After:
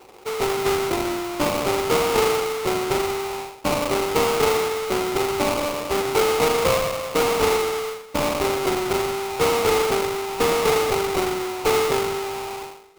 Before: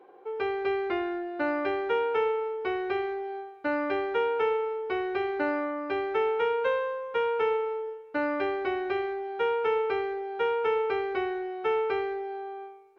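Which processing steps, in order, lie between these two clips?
hum removal 58.89 Hz, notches 7
sample-rate reduction 1,700 Hz, jitter 20%
level +7 dB

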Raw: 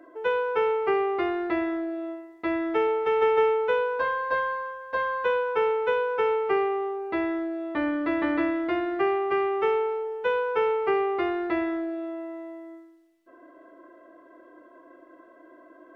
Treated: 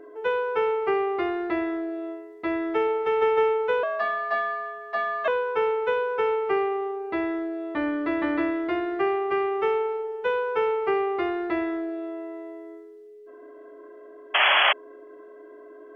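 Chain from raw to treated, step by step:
0:03.83–0:05.28: frequency shifter +150 Hz
steady tone 420 Hz −44 dBFS
0:14.34–0:14.73: sound drawn into the spectrogram noise 540–3,400 Hz −19 dBFS

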